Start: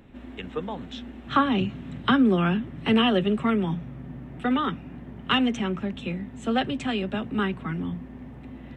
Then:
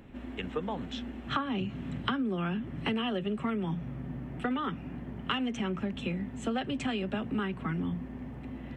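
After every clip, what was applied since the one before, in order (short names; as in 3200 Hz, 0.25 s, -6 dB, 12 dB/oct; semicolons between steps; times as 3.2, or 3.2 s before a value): notch 3700 Hz, Q 14; compressor 10:1, threshold -28 dBFS, peak gain reduction 13 dB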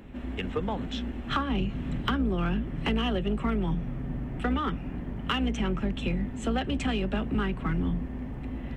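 octaver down 2 oct, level -1 dB; in parallel at -6 dB: overloaded stage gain 28.5 dB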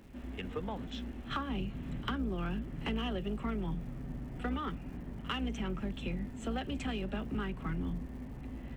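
crackle 360/s -47 dBFS; pre-echo 49 ms -20 dB; gain -8 dB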